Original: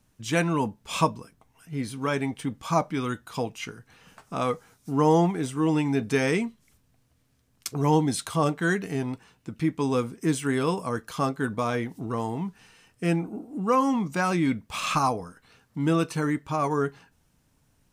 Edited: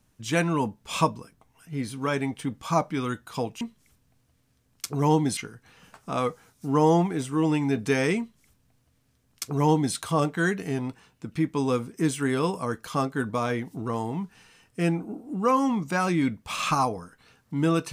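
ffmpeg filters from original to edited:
-filter_complex "[0:a]asplit=3[a][b][c];[a]atrim=end=3.612[d];[b]atrim=start=6.428:end=8.192[e];[c]atrim=start=3.608[f];[d][e]acrossfade=d=0.004:c1=hsin:c2=hsin[g];[g][f]acrossfade=d=0.004:c1=hsin:c2=hsin"

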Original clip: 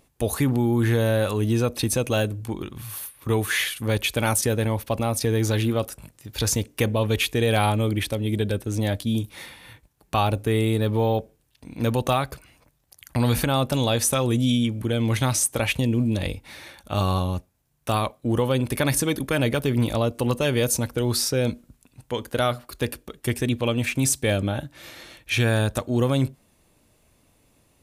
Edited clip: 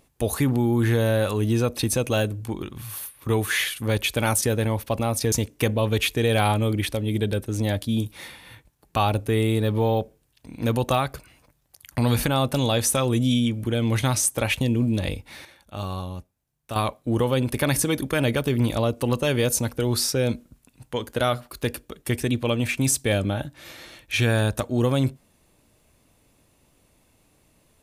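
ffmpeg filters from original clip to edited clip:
-filter_complex "[0:a]asplit=4[a][b][c][d];[a]atrim=end=5.322[e];[b]atrim=start=6.498:end=16.632[f];[c]atrim=start=16.628:end=17.942,asetpts=PTS-STARTPTS,volume=-8dB[g];[d]atrim=start=17.938[h];[e][f]acrossfade=d=0.004:c1=hsin:c2=hsin[i];[i][g]acrossfade=d=0.004:c1=hsin:c2=hsin[j];[j][h]acrossfade=d=0.004:c1=hsin:c2=hsin"

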